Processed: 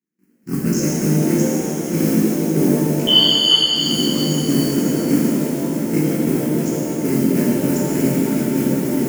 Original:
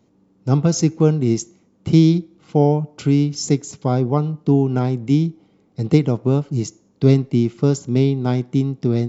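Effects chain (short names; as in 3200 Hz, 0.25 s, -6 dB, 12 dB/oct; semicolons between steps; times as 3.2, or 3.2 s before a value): cycle switcher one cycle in 3, muted; gate with hold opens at -50 dBFS; HPF 190 Hz 24 dB/oct; band shelf 820 Hz -13 dB; in parallel at -2 dB: level quantiser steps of 20 dB; on the sum: modulation noise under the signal 17 dB; fixed phaser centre 1500 Hz, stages 4; on a send: swelling echo 0.157 s, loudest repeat 5, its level -15 dB; 3.07–3.76 on the sum: inverted band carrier 3300 Hz; maximiser +8 dB; shimmer reverb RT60 2.7 s, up +7 st, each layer -8 dB, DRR -5 dB; gain -9 dB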